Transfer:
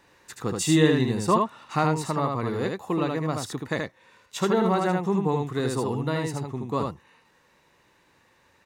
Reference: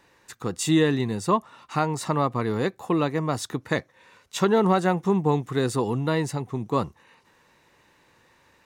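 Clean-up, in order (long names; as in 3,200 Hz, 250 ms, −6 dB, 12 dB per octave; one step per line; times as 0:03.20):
echo removal 77 ms −3.5 dB
level correction +3.5 dB, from 0:01.94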